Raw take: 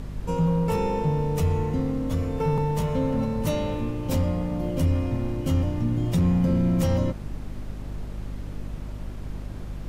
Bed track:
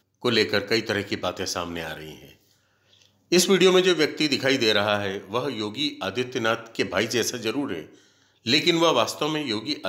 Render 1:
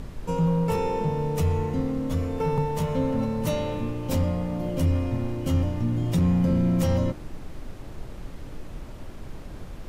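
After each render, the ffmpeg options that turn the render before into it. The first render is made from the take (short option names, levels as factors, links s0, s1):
-af "bandreject=f=50:t=h:w=4,bandreject=f=100:t=h:w=4,bandreject=f=150:t=h:w=4,bandreject=f=200:t=h:w=4,bandreject=f=250:t=h:w=4,bandreject=f=300:t=h:w=4,bandreject=f=350:t=h:w=4"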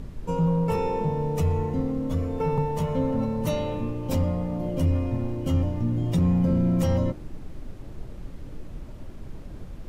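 -af "afftdn=nr=6:nf=-40"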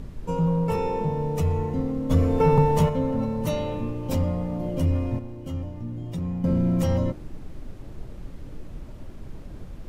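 -filter_complex "[0:a]asplit=3[s0][s1][s2];[s0]afade=t=out:st=2.09:d=0.02[s3];[s1]acontrast=81,afade=t=in:st=2.09:d=0.02,afade=t=out:st=2.88:d=0.02[s4];[s2]afade=t=in:st=2.88:d=0.02[s5];[s3][s4][s5]amix=inputs=3:normalize=0,asplit=3[s6][s7][s8];[s6]atrim=end=5.192[s9];[s7]atrim=start=5.188:end=6.442,asetpts=PTS-STARTPTS,volume=0.398[s10];[s8]atrim=start=6.438[s11];[s9][s10]acrossfade=d=0.004:c1=hsin:c2=hsin[s12];[s12][s11]acrossfade=d=0.004:c1=hsin:c2=hsin"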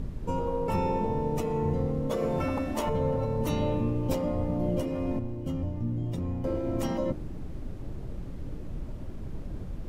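-af "afftfilt=real='re*lt(hypot(re,im),0.355)':imag='im*lt(hypot(re,im),0.355)':win_size=1024:overlap=0.75,tiltshelf=f=750:g=3"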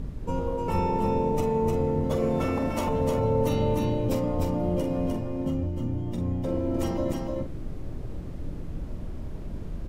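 -filter_complex "[0:a]asplit=2[s0][s1];[s1]adelay=45,volume=0.376[s2];[s0][s2]amix=inputs=2:normalize=0,asplit=2[s3][s4];[s4]aecho=0:1:303:0.668[s5];[s3][s5]amix=inputs=2:normalize=0"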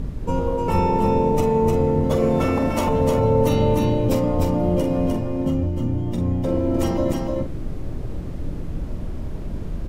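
-af "volume=2.11"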